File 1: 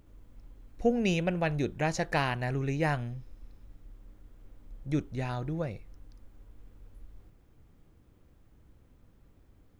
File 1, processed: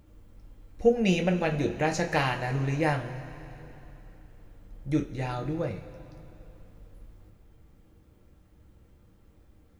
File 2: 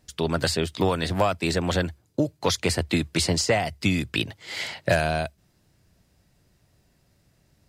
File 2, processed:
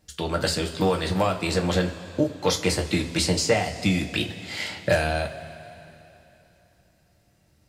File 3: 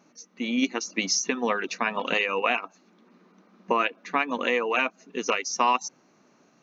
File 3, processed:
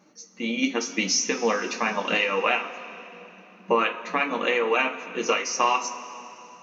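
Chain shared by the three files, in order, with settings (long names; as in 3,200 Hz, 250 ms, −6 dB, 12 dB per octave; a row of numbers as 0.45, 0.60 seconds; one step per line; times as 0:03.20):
coupled-rooms reverb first 0.22 s, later 3.2 s, from −19 dB, DRR 1.5 dB
normalise the peak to −9 dBFS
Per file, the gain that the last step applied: +1.0, −2.0, 0.0 decibels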